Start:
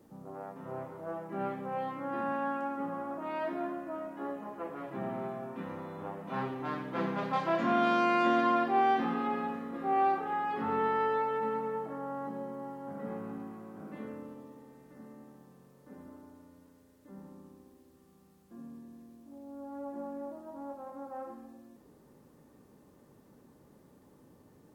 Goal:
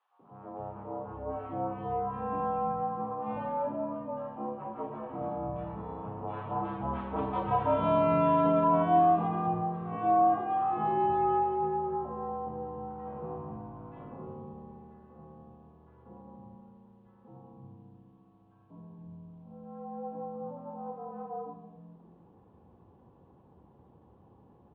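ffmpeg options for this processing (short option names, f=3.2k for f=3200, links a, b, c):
-filter_complex "[0:a]equalizer=f=125:t=o:w=1:g=10,equalizer=f=1k:t=o:w=1:g=10,equalizer=f=2k:t=o:w=1:g=-11,acrossover=split=220|1300[a][b][c];[b]adelay=190[d];[a]adelay=470[e];[e][d][c]amix=inputs=3:normalize=0,highpass=f=150:t=q:w=0.5412,highpass=f=150:t=q:w=1.307,lowpass=f=3.2k:t=q:w=0.5176,lowpass=f=3.2k:t=q:w=0.7071,lowpass=f=3.2k:t=q:w=1.932,afreqshift=-62"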